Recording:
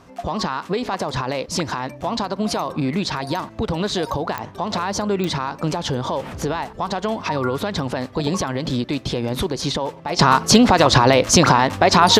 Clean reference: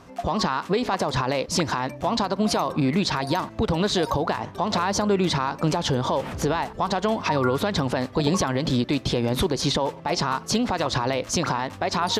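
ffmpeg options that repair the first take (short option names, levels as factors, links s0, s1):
-af "adeclick=t=4,asetnsamples=n=441:p=0,asendcmd='10.19 volume volume -11dB',volume=1"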